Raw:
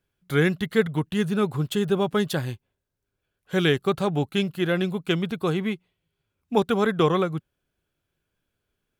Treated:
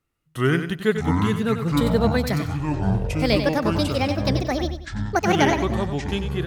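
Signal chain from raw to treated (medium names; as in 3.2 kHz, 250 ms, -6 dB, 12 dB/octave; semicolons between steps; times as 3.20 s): gliding tape speed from 81% -> 197%; ever faster or slower copies 445 ms, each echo -7 st, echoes 3; feedback delay 94 ms, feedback 30%, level -9 dB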